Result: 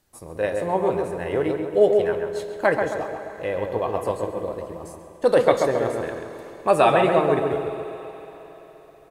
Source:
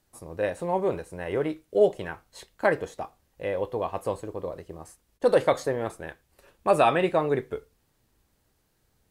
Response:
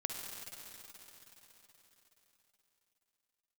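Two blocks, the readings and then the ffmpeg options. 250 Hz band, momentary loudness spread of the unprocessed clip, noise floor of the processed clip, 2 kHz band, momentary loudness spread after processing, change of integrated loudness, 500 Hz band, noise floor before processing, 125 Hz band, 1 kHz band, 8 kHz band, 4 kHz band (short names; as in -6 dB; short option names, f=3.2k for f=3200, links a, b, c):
+5.0 dB, 19 LU, -47 dBFS, +4.5 dB, 18 LU, +4.5 dB, +5.0 dB, -71 dBFS, +4.0 dB, +4.5 dB, +3.5 dB, +4.0 dB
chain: -filter_complex "[0:a]asplit=2[a][b];[b]adelay=135,lowpass=f=1.6k:p=1,volume=-3.5dB,asplit=2[c][d];[d]adelay=135,lowpass=f=1.6k:p=1,volume=0.54,asplit=2[e][f];[f]adelay=135,lowpass=f=1.6k:p=1,volume=0.54,asplit=2[g][h];[h]adelay=135,lowpass=f=1.6k:p=1,volume=0.54,asplit=2[i][j];[j]adelay=135,lowpass=f=1.6k:p=1,volume=0.54,asplit=2[k][l];[l]adelay=135,lowpass=f=1.6k:p=1,volume=0.54,asplit=2[m][n];[n]adelay=135,lowpass=f=1.6k:p=1,volume=0.54[o];[a][c][e][g][i][k][m][o]amix=inputs=8:normalize=0,asplit=2[p][q];[1:a]atrim=start_sample=2205,lowshelf=f=180:g=-8.5[r];[q][r]afir=irnorm=-1:irlink=0,volume=-5.5dB[s];[p][s]amix=inputs=2:normalize=0"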